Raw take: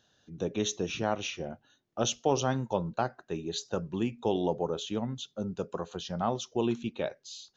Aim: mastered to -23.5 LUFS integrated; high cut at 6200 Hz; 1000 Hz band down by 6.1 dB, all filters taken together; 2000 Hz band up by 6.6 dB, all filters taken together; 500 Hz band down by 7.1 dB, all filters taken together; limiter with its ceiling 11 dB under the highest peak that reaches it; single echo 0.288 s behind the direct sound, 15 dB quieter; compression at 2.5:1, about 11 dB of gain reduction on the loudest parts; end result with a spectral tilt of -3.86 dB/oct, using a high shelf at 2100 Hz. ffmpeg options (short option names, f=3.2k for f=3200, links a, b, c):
-af "lowpass=6.2k,equalizer=f=500:t=o:g=-8,equalizer=f=1k:t=o:g=-8.5,equalizer=f=2k:t=o:g=6.5,highshelf=f=2.1k:g=8.5,acompressor=threshold=-38dB:ratio=2.5,alimiter=level_in=8.5dB:limit=-24dB:level=0:latency=1,volume=-8.5dB,aecho=1:1:288:0.178,volume=20dB"